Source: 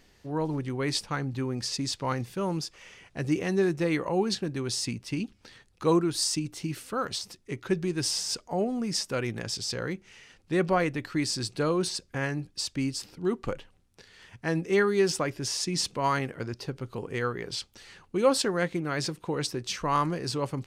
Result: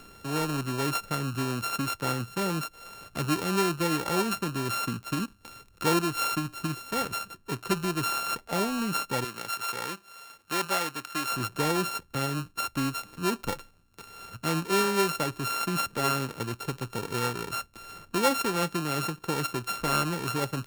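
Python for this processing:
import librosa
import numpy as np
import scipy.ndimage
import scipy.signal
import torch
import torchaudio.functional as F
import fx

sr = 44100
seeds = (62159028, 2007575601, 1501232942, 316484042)

y = np.r_[np.sort(x[:len(x) // 32 * 32].reshape(-1, 32), axis=1).ravel(), x[len(x) // 32 * 32:]]
y = fx.highpass(y, sr, hz=850.0, slope=6, at=(9.24, 11.31))
y = fx.band_squash(y, sr, depth_pct=40)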